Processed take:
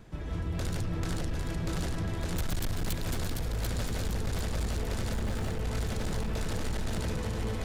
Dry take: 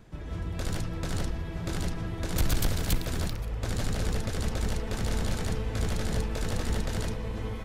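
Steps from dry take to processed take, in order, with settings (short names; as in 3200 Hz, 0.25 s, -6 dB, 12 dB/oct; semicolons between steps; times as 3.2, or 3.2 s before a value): 5.13–5.65 median filter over 9 samples; compressor, threshold -29 dBFS, peak gain reduction 8 dB; on a send: split-band echo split 440 Hz, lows 0.179 s, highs 0.742 s, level -4.5 dB; on the sum: overloaded stage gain 28 dB; gain +1.5 dB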